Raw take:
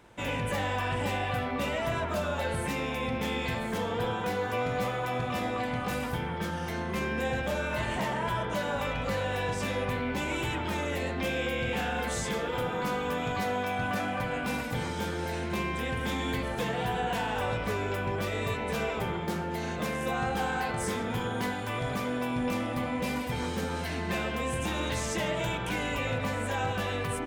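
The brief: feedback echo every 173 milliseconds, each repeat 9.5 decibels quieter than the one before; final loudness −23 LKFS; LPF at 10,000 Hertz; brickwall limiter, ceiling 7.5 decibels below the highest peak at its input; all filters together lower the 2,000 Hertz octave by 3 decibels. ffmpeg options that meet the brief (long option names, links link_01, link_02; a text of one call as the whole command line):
ffmpeg -i in.wav -af "lowpass=10000,equalizer=frequency=2000:width_type=o:gain=-4,alimiter=level_in=4.5dB:limit=-24dB:level=0:latency=1,volume=-4.5dB,aecho=1:1:173|346|519|692:0.335|0.111|0.0365|0.012,volume=13.5dB" out.wav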